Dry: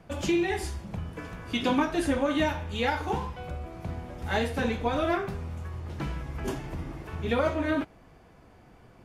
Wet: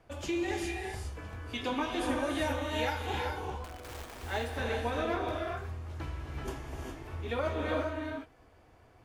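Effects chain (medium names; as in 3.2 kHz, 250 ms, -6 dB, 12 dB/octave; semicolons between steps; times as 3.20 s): 2.09–3.07 s: treble shelf 8.1 kHz +11 dB; 3.64–4.23 s: integer overflow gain 34.5 dB; peaking EQ 180 Hz -13 dB 0.6 oct; gated-style reverb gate 430 ms rising, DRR 1 dB; trim -6.5 dB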